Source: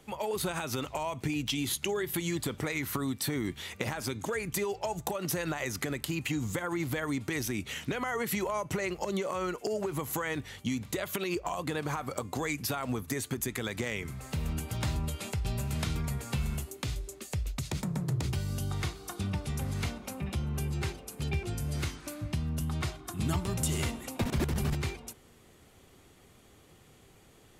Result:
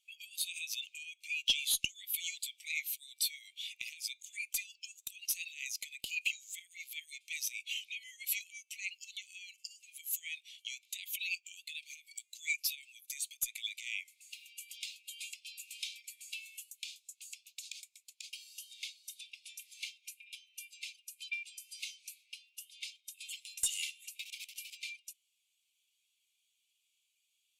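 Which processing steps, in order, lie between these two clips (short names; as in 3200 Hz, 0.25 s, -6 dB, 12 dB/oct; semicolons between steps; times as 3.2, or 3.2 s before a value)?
steep high-pass 2300 Hz 72 dB/oct; one-sided clip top -29 dBFS; spectral expander 1.5:1; gain +2 dB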